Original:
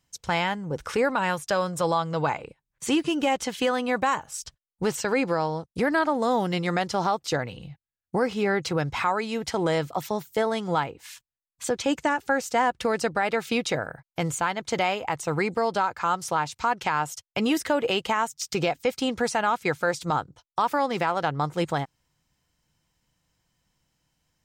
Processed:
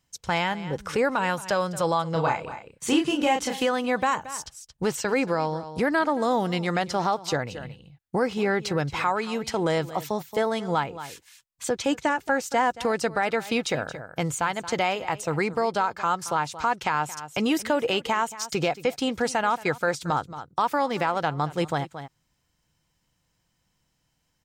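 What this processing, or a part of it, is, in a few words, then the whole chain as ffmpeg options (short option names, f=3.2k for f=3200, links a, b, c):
ducked delay: -filter_complex "[0:a]asettb=1/sr,asplit=3[a][b][c];[a]atrim=end=2.124[d];[b]atrim=start=2.12:end=3.64,asetpts=PTS-STARTPTS,afade=t=in:d=0.004:c=qsin,afade=t=out:st=1.516:d=0.004:c=qsin,asplit=2[e][f];[f]adelay=31,volume=-3.5dB[g];[e][g]amix=inputs=2:normalize=0,atrim=end_sample=67032[h];[c]atrim=start=3.636[i];[d][h]acrossfade=d=0.004:c1=hsin:c2=qsin[j];[j][i]acrossfade=d=0.004:c1=qsin:c2=hsin,asplit=3[k][l][m];[l]adelay=225,volume=-9dB[n];[m]apad=whole_len=1088078[o];[n][o]sidechaincompress=threshold=-33dB:ratio=6:attack=38:release=317[p];[k][p]amix=inputs=2:normalize=0"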